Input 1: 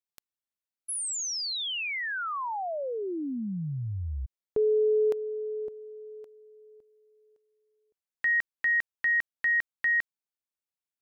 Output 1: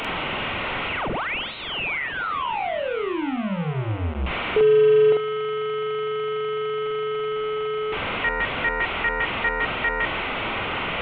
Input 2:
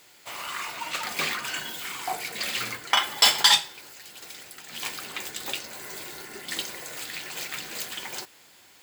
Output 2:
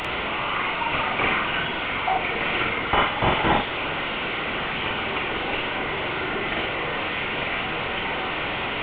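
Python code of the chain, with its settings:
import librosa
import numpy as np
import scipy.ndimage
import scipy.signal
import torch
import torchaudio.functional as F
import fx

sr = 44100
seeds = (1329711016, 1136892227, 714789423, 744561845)

y = fx.delta_mod(x, sr, bps=16000, step_db=-28.0)
y = fx.notch(y, sr, hz=1700.0, q=7.5)
y = fx.doubler(y, sr, ms=46.0, db=-2)
y = y * 10.0 ** (6.5 / 20.0)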